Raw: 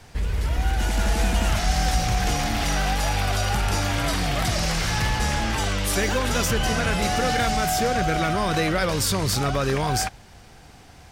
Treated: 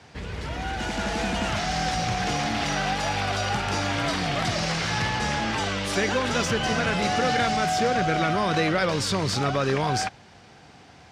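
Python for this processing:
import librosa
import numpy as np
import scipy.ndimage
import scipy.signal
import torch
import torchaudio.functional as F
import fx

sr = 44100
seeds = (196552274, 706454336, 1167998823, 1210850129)

y = fx.bandpass_edges(x, sr, low_hz=120.0, high_hz=5600.0)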